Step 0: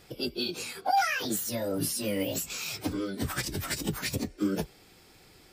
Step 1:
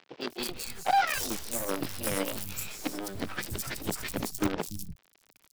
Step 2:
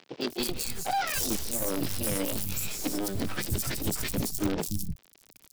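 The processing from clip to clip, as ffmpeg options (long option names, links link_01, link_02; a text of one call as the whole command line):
ffmpeg -i in.wav -filter_complex "[0:a]acrusher=bits=5:dc=4:mix=0:aa=0.000001,acompressor=mode=upward:threshold=-49dB:ratio=2.5,acrossover=split=160|4600[link_01][link_02][link_03];[link_03]adelay=210[link_04];[link_01]adelay=290[link_05];[link_05][link_02][link_04]amix=inputs=3:normalize=0" out.wav
ffmpeg -i in.wav -af "alimiter=limit=-24dB:level=0:latency=1:release=11,equalizer=frequency=1400:width=0.43:gain=-7.5,volume=8.5dB" out.wav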